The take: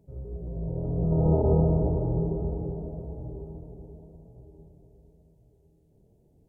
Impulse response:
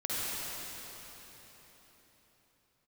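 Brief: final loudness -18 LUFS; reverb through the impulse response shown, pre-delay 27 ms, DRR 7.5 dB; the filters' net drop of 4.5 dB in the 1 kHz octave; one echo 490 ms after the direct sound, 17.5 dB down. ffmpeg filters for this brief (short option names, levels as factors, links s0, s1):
-filter_complex "[0:a]equalizer=f=1000:t=o:g=-6.5,aecho=1:1:490:0.133,asplit=2[s0][s1];[1:a]atrim=start_sample=2205,adelay=27[s2];[s1][s2]afir=irnorm=-1:irlink=0,volume=0.178[s3];[s0][s3]amix=inputs=2:normalize=0,volume=2.82"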